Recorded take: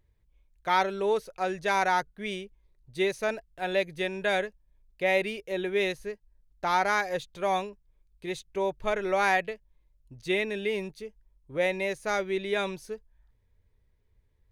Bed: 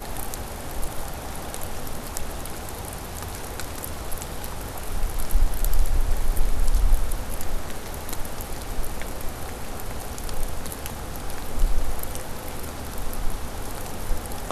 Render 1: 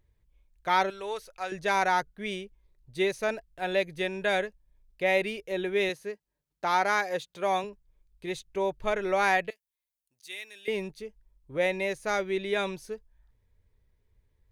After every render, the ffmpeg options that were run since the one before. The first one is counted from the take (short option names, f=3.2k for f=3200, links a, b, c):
-filter_complex "[0:a]asettb=1/sr,asplit=3[a][b][c];[a]atrim=end=0.904[d];[b]atrim=start=0.9:end=1.52,asetpts=PTS-STARTPTS,afade=t=in:d=0.004:c=qsin,afade=t=out:st=0.616:d=0.004:c=qsin,equalizer=f=230:t=o:w=2.7:g=-14[e];[c]atrim=start=1.516[f];[d][e]acrossfade=d=0.004:c1=hsin:c2=qsin[g];[g][f]acrossfade=d=0.004:c1=qsin:c2=hsin,asettb=1/sr,asplit=3[h][i][j];[h]atrim=end=5.894[k];[i]atrim=start=5.89:end=7.64,asetpts=PTS-STARTPTS,afade=t=in:d=0.004:c=qsin,afade=t=out:st=1.746:d=0.004:c=qsin,highpass=170[l];[j]atrim=start=7.636[m];[k][l]acrossfade=d=0.004:c1=hsin:c2=qsin[n];[n][m]acrossfade=d=0.004:c1=qsin:c2=hsin,asettb=1/sr,asplit=3[o][p][q];[o]atrim=end=9.504[r];[p]atrim=start=9.5:end=10.68,asetpts=PTS-STARTPTS,afade=t=in:d=0.004:c=qsin,afade=t=out:st=1.176:d=0.004:c=qsin,aderivative[s];[q]atrim=start=10.676[t];[r][s]acrossfade=d=0.004:c1=hsin:c2=qsin[u];[u][t]acrossfade=d=0.004:c1=qsin:c2=hsin"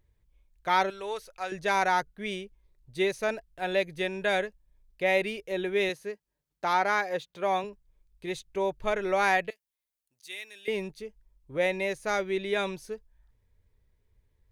-filter_complex "[0:a]asettb=1/sr,asplit=3[a][b][c];[a]atrim=end=6.734[d];[b]atrim=start=6.73:end=7.65,asetpts=PTS-STARTPTS,afade=t=in:d=0.004:c=qsin,afade=t=out:st=0.916:d=0.004:c=qsin,equalizer=f=9.1k:w=0.61:g=-6.5[e];[c]atrim=start=7.646[f];[d][e]acrossfade=d=0.004:c1=hsin:c2=qsin[g];[g][f]acrossfade=d=0.004:c1=qsin:c2=hsin"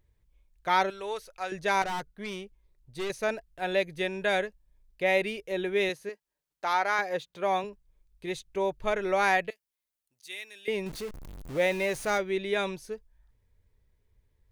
-filter_complex "[0:a]asettb=1/sr,asplit=3[a][b][c];[a]atrim=end=1.824[d];[b]atrim=start=1.82:end=3.1,asetpts=PTS-STARTPTS,afade=t=in:d=0.004:c=qsin,afade=t=out:st=1.276:d=0.004:c=qsin,aeval=exprs='(tanh(31.6*val(0)+0.35)-tanh(0.35))/31.6':c=same[e];[c]atrim=start=3.096[f];[d][e]acrossfade=d=0.004:c1=hsin:c2=qsin[g];[g][f]acrossfade=d=0.004:c1=qsin:c2=hsin,asettb=1/sr,asplit=3[h][i][j];[h]atrim=end=6.094[k];[i]atrim=start=6.09:end=6.99,asetpts=PTS-STARTPTS,afade=t=in:d=0.004:c=qsin,afade=t=out:st=0.896:d=0.004:c=qsin,equalizer=f=75:w=0.32:g=-14.5[l];[j]atrim=start=6.986[m];[k][l]acrossfade=d=0.004:c1=hsin:c2=qsin[n];[n][m]acrossfade=d=0.004:c1=qsin:c2=hsin,asettb=1/sr,asplit=3[o][p][q];[o]atrim=end=10.864[r];[p]atrim=start=10.86:end=12.18,asetpts=PTS-STARTPTS,afade=t=in:d=0.004:c=qsin,afade=t=out:st=1.316:d=0.004:c=qsin,aeval=exprs='val(0)+0.5*0.0141*sgn(val(0))':c=same[s];[q]atrim=start=12.176[t];[r][s]acrossfade=d=0.004:c1=hsin:c2=qsin[u];[u][t]acrossfade=d=0.004:c1=qsin:c2=hsin"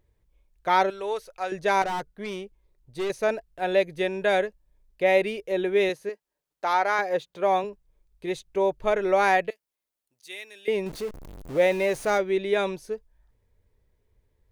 -af "equalizer=f=500:w=0.6:g=6"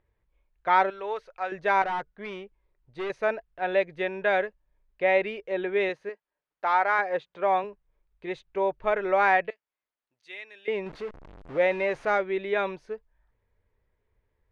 -af "lowpass=1.8k,tiltshelf=f=840:g=-6.5"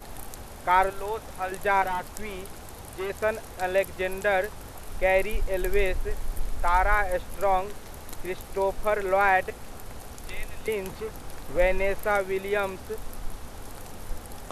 -filter_complex "[1:a]volume=-8.5dB[a];[0:a][a]amix=inputs=2:normalize=0"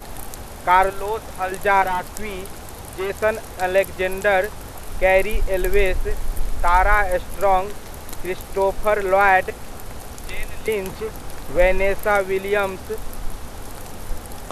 -af "volume=6.5dB,alimiter=limit=-3dB:level=0:latency=1"